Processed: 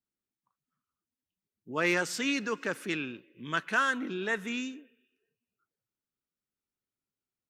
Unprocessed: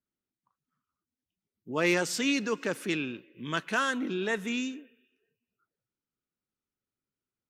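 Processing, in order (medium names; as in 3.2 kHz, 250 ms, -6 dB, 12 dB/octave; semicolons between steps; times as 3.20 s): dynamic bell 1.5 kHz, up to +6 dB, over -43 dBFS, Q 1.2; trim -3.5 dB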